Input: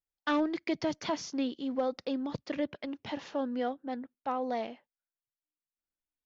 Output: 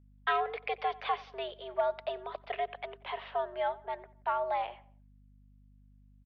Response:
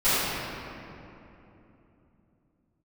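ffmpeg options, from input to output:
-filter_complex "[0:a]asplit=2[s0][s1];[s1]adelay=90,lowpass=f=2600:p=1,volume=0.0944,asplit=2[s2][s3];[s3]adelay=90,lowpass=f=2600:p=1,volume=0.43,asplit=2[s4][s5];[s5]adelay=90,lowpass=f=2600:p=1,volume=0.43[s6];[s0][s2][s4][s6]amix=inputs=4:normalize=0,highpass=f=420:t=q:w=0.5412,highpass=f=420:t=q:w=1.307,lowpass=f=3300:t=q:w=0.5176,lowpass=f=3300:t=q:w=0.7071,lowpass=f=3300:t=q:w=1.932,afreqshift=120,aeval=exprs='val(0)+0.000891*(sin(2*PI*50*n/s)+sin(2*PI*2*50*n/s)/2+sin(2*PI*3*50*n/s)/3+sin(2*PI*4*50*n/s)/4+sin(2*PI*5*50*n/s)/5)':c=same,volume=1.33"

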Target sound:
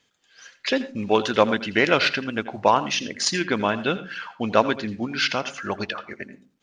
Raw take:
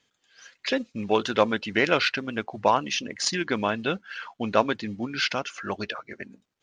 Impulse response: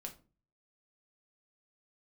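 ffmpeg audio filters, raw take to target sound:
-filter_complex "[0:a]asplit=2[s0][s1];[1:a]atrim=start_sample=2205,adelay=83[s2];[s1][s2]afir=irnorm=-1:irlink=0,volume=0.299[s3];[s0][s3]amix=inputs=2:normalize=0,volume=1.41"

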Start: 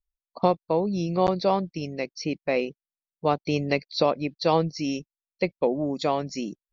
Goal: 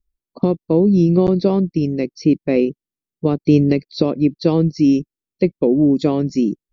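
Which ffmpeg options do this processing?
-af "alimiter=limit=0.237:level=0:latency=1:release=204,lowshelf=f=500:t=q:w=1.5:g=12.5"

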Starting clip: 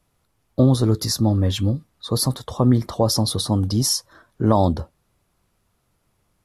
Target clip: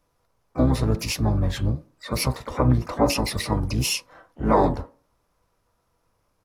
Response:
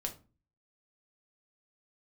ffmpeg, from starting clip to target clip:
-filter_complex "[0:a]asplit=2[s0][s1];[s1]highpass=f=420:w=0.5412,highpass=f=420:w=1.3066,equalizer=f=440:t=q:w=4:g=-3,equalizer=f=650:t=q:w=4:g=-5,equalizer=f=970:t=q:w=4:g=6,equalizer=f=2100:t=q:w=4:g=-8,lowpass=f=2700:w=0.5412,lowpass=f=2700:w=1.3066[s2];[1:a]atrim=start_sample=2205[s3];[s2][s3]afir=irnorm=-1:irlink=0,volume=1.19[s4];[s0][s4]amix=inputs=2:normalize=0,asplit=4[s5][s6][s7][s8];[s6]asetrate=22050,aresample=44100,atempo=2,volume=0.891[s9];[s7]asetrate=55563,aresample=44100,atempo=0.793701,volume=0.316[s10];[s8]asetrate=88200,aresample=44100,atempo=0.5,volume=0.126[s11];[s5][s9][s10][s11]amix=inputs=4:normalize=0,volume=0.473"

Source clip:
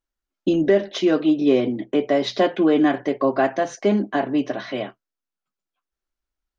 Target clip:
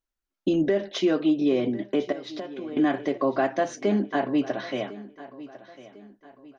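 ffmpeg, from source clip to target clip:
-filter_complex "[0:a]asettb=1/sr,asplit=3[s0][s1][s2];[s0]atrim=end=2.124[s3];[s1]atrim=start=2.12:end=2.77,asetpts=PTS-STARTPTS,afade=t=in:d=0.004:c=qsin,afade=t=out:st=0.646:d=0.004:c=qsin,acompressor=threshold=0.0316:ratio=16[s4];[s2]atrim=start=2.766[s5];[s3][s4]acrossfade=d=0.004:c1=hsin:c2=qsin[s6];[s6][s5]acrossfade=d=0.004:c1=qsin:c2=hsin,alimiter=limit=0.266:level=0:latency=1:release=129,aecho=1:1:1051|2102|3153:0.133|0.0533|0.0213,volume=0.75"

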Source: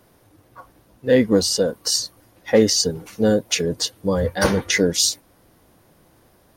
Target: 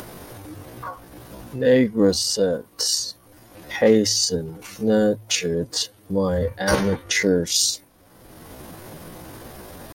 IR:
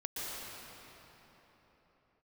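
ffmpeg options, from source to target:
-af "acompressor=mode=upward:threshold=0.0891:ratio=2.5,atempo=0.66,bandreject=f=53.63:t=h:w=4,bandreject=f=107.26:t=h:w=4,volume=0.841"

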